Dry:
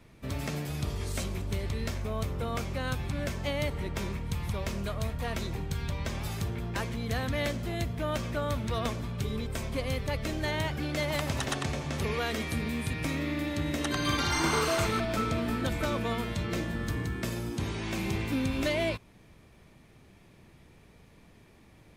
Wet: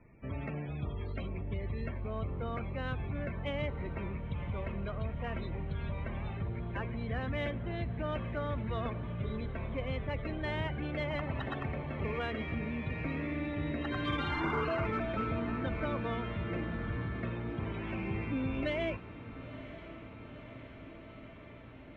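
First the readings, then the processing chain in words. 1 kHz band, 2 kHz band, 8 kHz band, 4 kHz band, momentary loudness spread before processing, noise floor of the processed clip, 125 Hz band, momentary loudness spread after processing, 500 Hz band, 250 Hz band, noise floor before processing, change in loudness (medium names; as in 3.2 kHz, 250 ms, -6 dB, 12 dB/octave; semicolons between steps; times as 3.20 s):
-4.5 dB, -5.0 dB, under -30 dB, -11.0 dB, 6 LU, -50 dBFS, -3.5 dB, 12 LU, -4.0 dB, -4.0 dB, -57 dBFS, -4.5 dB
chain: spectral gate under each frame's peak -30 dB strong; low-pass 3.4 kHz 24 dB/octave; loudest bins only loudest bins 64; in parallel at -10.5 dB: saturation -33.5 dBFS, distortion -9 dB; on the sum: echo that smears into a reverb 977 ms, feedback 76%, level -14.5 dB; trim -5.5 dB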